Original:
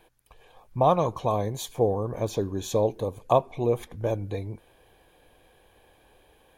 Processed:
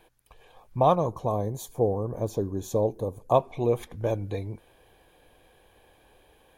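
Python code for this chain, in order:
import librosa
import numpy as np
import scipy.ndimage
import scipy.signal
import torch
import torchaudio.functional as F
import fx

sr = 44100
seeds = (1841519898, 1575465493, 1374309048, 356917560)

y = fx.peak_eq(x, sr, hz=2700.0, db=-13.5, octaves=1.9, at=(0.95, 3.34))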